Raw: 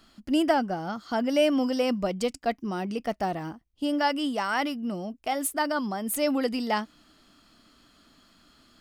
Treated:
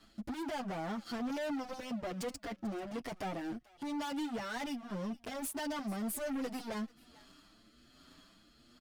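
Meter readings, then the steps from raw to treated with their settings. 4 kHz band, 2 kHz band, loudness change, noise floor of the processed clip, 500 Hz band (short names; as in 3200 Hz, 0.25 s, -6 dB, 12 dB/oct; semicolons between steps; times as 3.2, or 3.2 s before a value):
-12.5 dB, -12.0 dB, -12.0 dB, -65 dBFS, -13.5 dB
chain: sample leveller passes 2; compressor 6:1, threshold -31 dBFS, peak gain reduction 15 dB; soft clip -27 dBFS, distortion -20 dB; rotary speaker horn 1.2 Hz; hard clip -40 dBFS, distortion -8 dB; on a send: thinning echo 0.44 s, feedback 17%, high-pass 1200 Hz, level -18.5 dB; on the sum: endless flanger 7.2 ms +1.2 Hz; gain +6 dB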